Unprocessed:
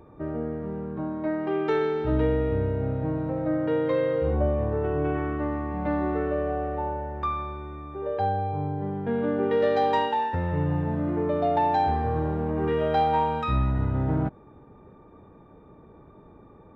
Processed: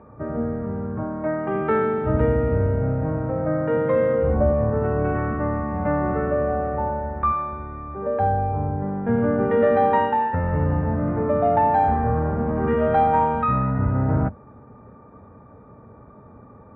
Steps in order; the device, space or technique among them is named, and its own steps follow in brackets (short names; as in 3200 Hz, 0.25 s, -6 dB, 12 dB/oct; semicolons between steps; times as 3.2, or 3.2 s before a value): sub-octave bass pedal (octaver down 1 oct, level -4 dB; speaker cabinet 60–2200 Hz, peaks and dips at 110 Hz +4 dB, 160 Hz -4 dB, 230 Hz +5 dB, 340 Hz -9 dB, 570 Hz +3 dB, 1300 Hz +5 dB); gain +4 dB